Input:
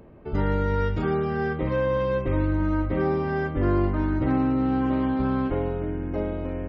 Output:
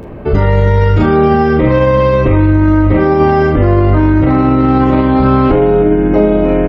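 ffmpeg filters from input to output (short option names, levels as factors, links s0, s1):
-filter_complex "[0:a]asplit=2[s0][s1];[s1]adelay=43,volume=0.251[s2];[s0][s2]amix=inputs=2:normalize=0,asplit=2[s3][s4];[s4]aecho=0:1:29|39:0.562|0.562[s5];[s3][s5]amix=inputs=2:normalize=0,alimiter=level_in=10:limit=0.891:release=50:level=0:latency=1,volume=0.891"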